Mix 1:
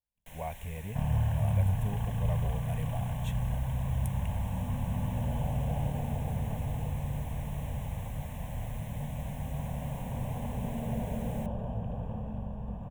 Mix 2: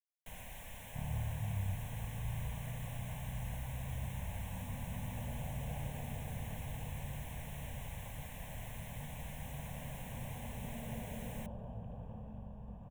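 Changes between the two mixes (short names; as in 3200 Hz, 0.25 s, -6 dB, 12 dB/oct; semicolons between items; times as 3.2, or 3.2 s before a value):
speech: muted; second sound -10.5 dB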